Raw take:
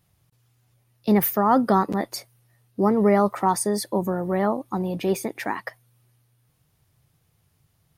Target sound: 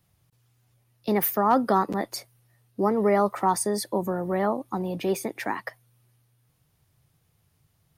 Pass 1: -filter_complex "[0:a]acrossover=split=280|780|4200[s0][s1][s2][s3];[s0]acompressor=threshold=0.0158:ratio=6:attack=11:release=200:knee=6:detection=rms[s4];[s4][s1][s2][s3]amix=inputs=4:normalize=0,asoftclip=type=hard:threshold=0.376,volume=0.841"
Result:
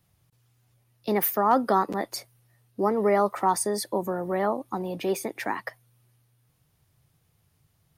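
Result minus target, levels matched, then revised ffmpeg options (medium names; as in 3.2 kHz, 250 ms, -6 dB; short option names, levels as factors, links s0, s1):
compression: peak gain reduction +6.5 dB
-filter_complex "[0:a]acrossover=split=280|780|4200[s0][s1][s2][s3];[s0]acompressor=threshold=0.0376:ratio=6:attack=11:release=200:knee=6:detection=rms[s4];[s4][s1][s2][s3]amix=inputs=4:normalize=0,asoftclip=type=hard:threshold=0.376,volume=0.841"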